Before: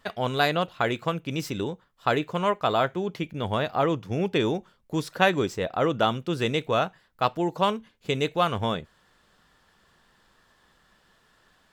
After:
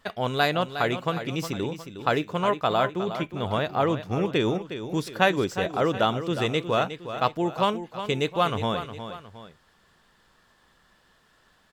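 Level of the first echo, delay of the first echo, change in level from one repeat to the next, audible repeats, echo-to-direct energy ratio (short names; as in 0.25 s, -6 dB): -10.5 dB, 0.361 s, -7.5 dB, 2, -10.0 dB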